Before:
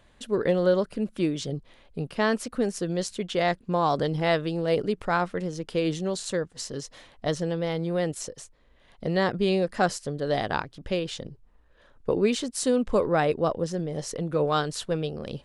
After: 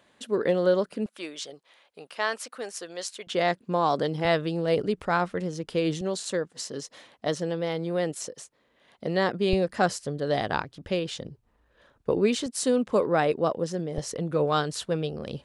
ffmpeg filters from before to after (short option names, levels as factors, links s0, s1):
-af "asetnsamples=n=441:p=0,asendcmd='1.06 highpass f 710;3.27 highpass f 170;4.25 highpass f 46;6.01 highpass f 180;9.53 highpass f 57;12.46 highpass f 150;13.98 highpass f 58',highpass=190"